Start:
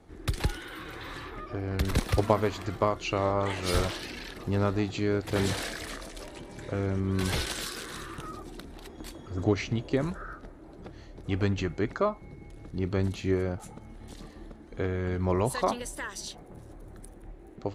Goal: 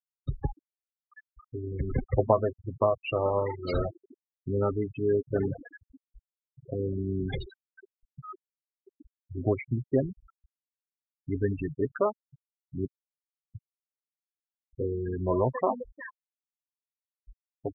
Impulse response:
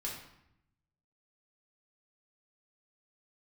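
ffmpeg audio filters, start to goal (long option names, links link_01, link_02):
-filter_complex "[0:a]asettb=1/sr,asplit=3[link_01][link_02][link_03];[link_01]atrim=end=12.864[link_04];[link_02]atrim=start=12.86:end=13.55,asetpts=PTS-STARTPTS,afade=type=in:duration=0.004:curve=qsin,afade=type=out:start_time=0.686:duration=0.004:curve=qsin,aderivative[link_05];[link_03]atrim=start=13.546[link_06];[link_04][link_05]acrossfade=duration=0.004:curve1=hsin:curve2=qsin[link_07];[link_07][link_06]acrossfade=duration=0.004:curve1=qsin:curve2=hsin,flanger=delay=7.1:depth=1:regen=47:speed=0.17:shape=triangular,afftfilt=real='re*gte(hypot(re,im),0.0501)':imag='im*gte(hypot(re,im),0.0501)':win_size=1024:overlap=0.75,adynamicequalizer=threshold=0.00794:dfrequency=590:dqfactor=1.4:tfrequency=590:tqfactor=1.4:attack=5:release=100:ratio=0.375:range=2:mode=boostabove:tftype=bell,volume=3dB"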